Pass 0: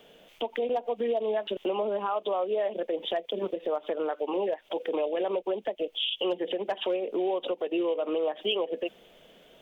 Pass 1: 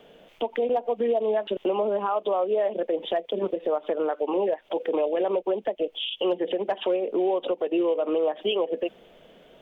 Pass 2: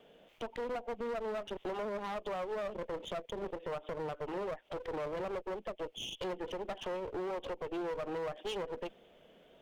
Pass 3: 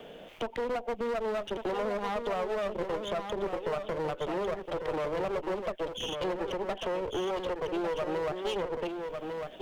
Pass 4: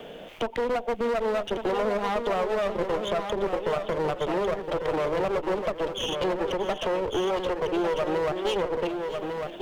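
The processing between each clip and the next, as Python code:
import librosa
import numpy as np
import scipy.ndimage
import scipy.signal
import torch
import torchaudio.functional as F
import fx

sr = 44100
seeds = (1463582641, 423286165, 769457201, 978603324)

y1 = fx.high_shelf(x, sr, hz=2900.0, db=-10.5)
y1 = F.gain(torch.from_numpy(y1), 4.5).numpy()
y2 = fx.clip_asym(y1, sr, top_db=-37.5, bottom_db=-21.0)
y2 = fx.wow_flutter(y2, sr, seeds[0], rate_hz=2.1, depth_cents=16.0)
y2 = F.gain(torch.from_numpy(y2), -8.5).numpy()
y3 = y2 + 10.0 ** (-7.5 / 20.0) * np.pad(y2, (int(1150 * sr / 1000.0), 0))[:len(y2)]
y3 = fx.band_squash(y3, sr, depth_pct=40)
y3 = F.gain(torch.from_numpy(y3), 5.5).numpy()
y4 = y3 + 10.0 ** (-14.0 / 20.0) * np.pad(y3, (int(632 * sr / 1000.0), 0))[:len(y3)]
y4 = F.gain(torch.from_numpy(y4), 5.5).numpy()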